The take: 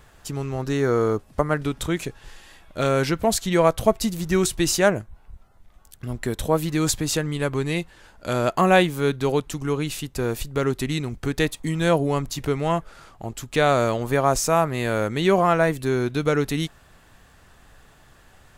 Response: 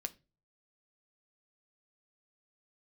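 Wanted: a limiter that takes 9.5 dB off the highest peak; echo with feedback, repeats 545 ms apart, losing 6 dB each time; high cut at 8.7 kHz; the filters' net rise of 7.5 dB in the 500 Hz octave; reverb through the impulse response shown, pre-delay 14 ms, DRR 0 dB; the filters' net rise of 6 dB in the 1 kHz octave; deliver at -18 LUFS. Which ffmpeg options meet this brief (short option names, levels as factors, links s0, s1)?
-filter_complex "[0:a]lowpass=8700,equalizer=f=500:t=o:g=8,equalizer=f=1000:t=o:g=5,alimiter=limit=0.447:level=0:latency=1,aecho=1:1:545|1090|1635|2180|2725|3270:0.501|0.251|0.125|0.0626|0.0313|0.0157,asplit=2[s0][s1];[1:a]atrim=start_sample=2205,adelay=14[s2];[s1][s2]afir=irnorm=-1:irlink=0,volume=1.19[s3];[s0][s3]amix=inputs=2:normalize=0,volume=0.794"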